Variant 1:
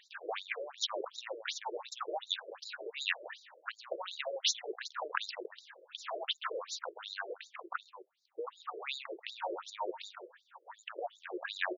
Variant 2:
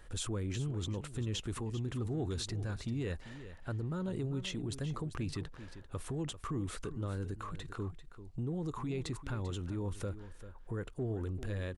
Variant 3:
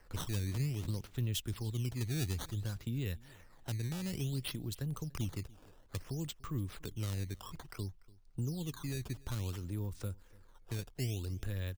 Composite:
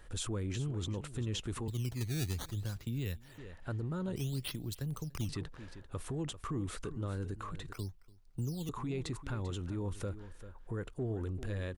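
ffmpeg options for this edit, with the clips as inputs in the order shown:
-filter_complex "[2:a]asplit=3[a][b][c];[1:a]asplit=4[d][e][f][g];[d]atrim=end=1.682[h];[a]atrim=start=1.678:end=3.382[i];[e]atrim=start=3.378:end=4.162[j];[b]atrim=start=4.158:end=5.292[k];[f]atrim=start=5.288:end=7.732[l];[c]atrim=start=7.728:end=8.692[m];[g]atrim=start=8.688[n];[h][i]acrossfade=d=0.004:c1=hsin:c2=hsin[o];[o][j]acrossfade=d=0.004:c1=hsin:c2=hsin[p];[p][k]acrossfade=d=0.004:c1=hsin:c2=hsin[q];[q][l]acrossfade=d=0.004:c1=hsin:c2=hsin[r];[r][m]acrossfade=d=0.004:c1=hsin:c2=hsin[s];[s][n]acrossfade=d=0.004:c1=hsin:c2=hsin"

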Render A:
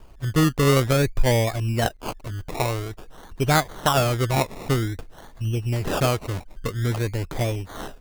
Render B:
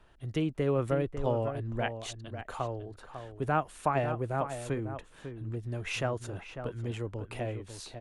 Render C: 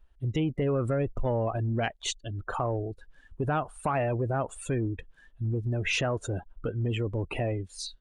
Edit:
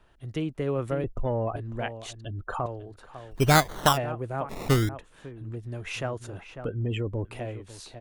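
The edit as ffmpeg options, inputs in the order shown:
-filter_complex "[2:a]asplit=3[a][b][c];[0:a]asplit=2[d][e];[1:a]asplit=6[f][g][h][i][j][k];[f]atrim=end=1.042[l];[a]atrim=start=1.038:end=1.562[m];[g]atrim=start=1.558:end=2.252[n];[b]atrim=start=2.248:end=2.662[o];[h]atrim=start=2.658:end=3.36[p];[d]atrim=start=3.3:end=3.98[q];[i]atrim=start=3.92:end=4.492[r];[e]atrim=start=4.488:end=4.892[s];[j]atrim=start=4.888:end=6.652[t];[c]atrim=start=6.648:end=7.252[u];[k]atrim=start=7.248[v];[l][m]acrossfade=d=0.004:c1=hsin:c2=hsin[w];[w][n]acrossfade=d=0.004:c1=hsin:c2=hsin[x];[x][o]acrossfade=d=0.004:c1=hsin:c2=hsin[y];[y][p]acrossfade=d=0.004:c1=hsin:c2=hsin[z];[z][q]acrossfade=d=0.06:c1=tri:c2=tri[aa];[aa][r]acrossfade=d=0.06:c1=tri:c2=tri[ab];[ab][s]acrossfade=d=0.004:c1=hsin:c2=hsin[ac];[ac][t]acrossfade=d=0.004:c1=hsin:c2=hsin[ad];[ad][u]acrossfade=d=0.004:c1=hsin:c2=hsin[ae];[ae][v]acrossfade=d=0.004:c1=hsin:c2=hsin"

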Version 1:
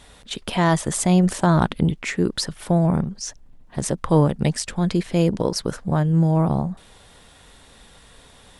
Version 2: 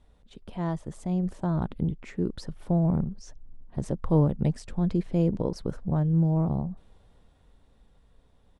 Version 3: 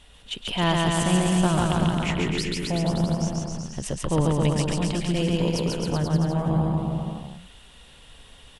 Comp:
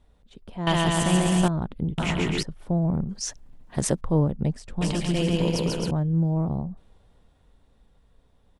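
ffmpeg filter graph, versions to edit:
-filter_complex "[2:a]asplit=3[a][b][c];[1:a]asplit=5[d][e][f][g][h];[d]atrim=end=0.672[i];[a]atrim=start=0.668:end=1.482[j];[e]atrim=start=1.478:end=1.982[k];[b]atrim=start=1.978:end=2.432[l];[f]atrim=start=2.428:end=3.092[m];[0:a]atrim=start=3.088:end=4.012[n];[g]atrim=start=4.008:end=4.812[o];[c]atrim=start=4.808:end=5.912[p];[h]atrim=start=5.908[q];[i][j]acrossfade=d=0.004:c1=hsin:c2=hsin[r];[r][k]acrossfade=d=0.004:c1=hsin:c2=hsin[s];[s][l]acrossfade=d=0.004:c1=hsin:c2=hsin[t];[t][m]acrossfade=d=0.004:c1=hsin:c2=hsin[u];[u][n]acrossfade=d=0.004:c1=hsin:c2=hsin[v];[v][o]acrossfade=d=0.004:c1=hsin:c2=hsin[w];[w][p]acrossfade=d=0.004:c1=hsin:c2=hsin[x];[x][q]acrossfade=d=0.004:c1=hsin:c2=hsin"

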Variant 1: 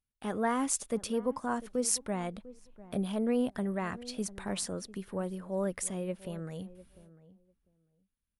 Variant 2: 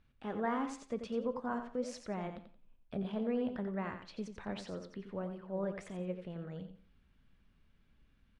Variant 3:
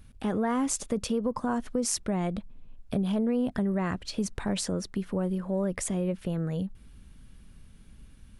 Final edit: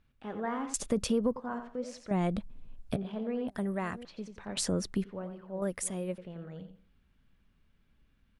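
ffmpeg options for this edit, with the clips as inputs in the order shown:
-filter_complex "[2:a]asplit=3[a][b][c];[0:a]asplit=2[d][e];[1:a]asplit=6[f][g][h][i][j][k];[f]atrim=end=0.742[l];[a]atrim=start=0.738:end=1.362[m];[g]atrim=start=1.358:end=2.112[n];[b]atrim=start=2.108:end=2.962[o];[h]atrim=start=2.958:end=3.482[p];[d]atrim=start=3.478:end=4.052[q];[i]atrim=start=4.048:end=4.572[r];[c]atrim=start=4.568:end=5.042[s];[j]atrim=start=5.038:end=5.622[t];[e]atrim=start=5.618:end=6.182[u];[k]atrim=start=6.178[v];[l][m]acrossfade=d=0.004:c1=hsin:c2=hsin[w];[w][n]acrossfade=d=0.004:c1=hsin:c2=hsin[x];[x][o]acrossfade=d=0.004:c1=hsin:c2=hsin[y];[y][p]acrossfade=d=0.004:c1=hsin:c2=hsin[z];[z][q]acrossfade=d=0.004:c1=hsin:c2=hsin[aa];[aa][r]acrossfade=d=0.004:c1=hsin:c2=hsin[ab];[ab][s]acrossfade=d=0.004:c1=hsin:c2=hsin[ac];[ac][t]acrossfade=d=0.004:c1=hsin:c2=hsin[ad];[ad][u]acrossfade=d=0.004:c1=hsin:c2=hsin[ae];[ae][v]acrossfade=d=0.004:c1=hsin:c2=hsin"

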